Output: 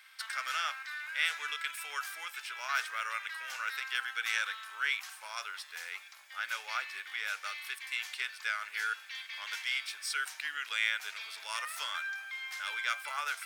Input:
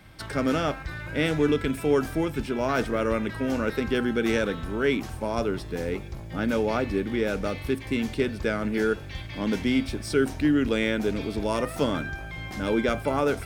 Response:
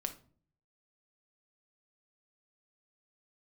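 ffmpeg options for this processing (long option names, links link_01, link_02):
-af "highpass=frequency=1300:width=0.5412,highpass=frequency=1300:width=1.3066"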